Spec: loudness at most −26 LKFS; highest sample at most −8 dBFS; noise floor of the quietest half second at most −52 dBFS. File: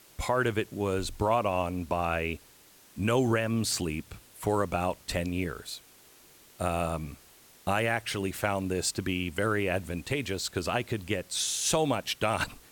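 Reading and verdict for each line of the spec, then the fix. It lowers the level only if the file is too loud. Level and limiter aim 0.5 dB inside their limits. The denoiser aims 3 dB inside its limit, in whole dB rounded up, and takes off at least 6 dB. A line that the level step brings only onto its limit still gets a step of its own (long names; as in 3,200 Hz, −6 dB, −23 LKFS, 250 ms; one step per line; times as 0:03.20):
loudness −30.0 LKFS: in spec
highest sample −14.0 dBFS: in spec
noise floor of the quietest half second −57 dBFS: in spec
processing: no processing needed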